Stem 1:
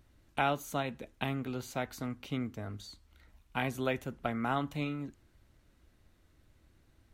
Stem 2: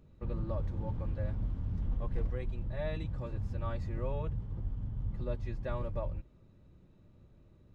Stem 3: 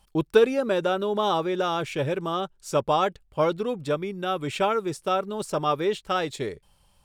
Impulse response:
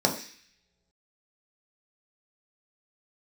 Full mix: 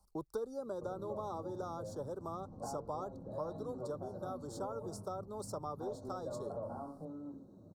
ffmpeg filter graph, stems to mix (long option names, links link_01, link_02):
-filter_complex "[0:a]lowpass=frequency=1900:width=0.5412,lowpass=frequency=1900:width=1.3066,acompressor=threshold=-38dB:ratio=6,adelay=2250,volume=-10.5dB,asplit=2[link_01][link_02];[link_02]volume=-7dB[link_03];[1:a]acompressor=threshold=-41dB:ratio=2.5,highpass=110,adelay=600,volume=0dB,asplit=2[link_04][link_05];[link_05]volume=-11.5dB[link_06];[2:a]volume=-8.5dB[link_07];[3:a]atrim=start_sample=2205[link_08];[link_03][link_06]amix=inputs=2:normalize=0[link_09];[link_09][link_08]afir=irnorm=-1:irlink=0[link_10];[link_01][link_04][link_07][link_10]amix=inputs=4:normalize=0,acrossover=split=99|390[link_11][link_12][link_13];[link_11]acompressor=threshold=-56dB:ratio=4[link_14];[link_12]acompressor=threshold=-51dB:ratio=4[link_15];[link_13]acompressor=threshold=-40dB:ratio=4[link_16];[link_14][link_15][link_16]amix=inputs=3:normalize=0,asuperstop=centerf=2400:order=8:qfactor=0.77"